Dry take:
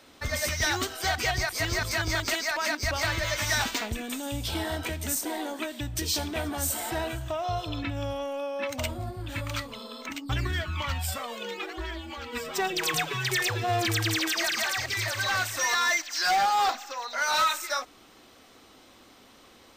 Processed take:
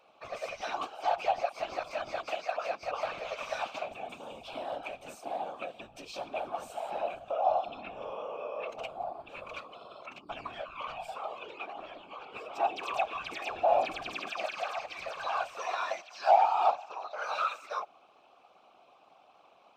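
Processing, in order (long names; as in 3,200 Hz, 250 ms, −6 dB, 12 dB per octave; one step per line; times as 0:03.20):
formant filter a
random phases in short frames
level +5 dB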